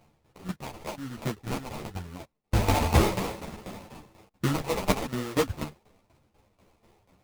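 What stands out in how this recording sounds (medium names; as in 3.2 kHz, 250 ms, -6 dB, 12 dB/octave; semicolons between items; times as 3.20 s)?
tremolo saw down 4.1 Hz, depth 80%; phasing stages 2, 0.99 Hz, lowest notch 210–2100 Hz; aliases and images of a low sample rate 1.6 kHz, jitter 20%; a shimmering, thickened sound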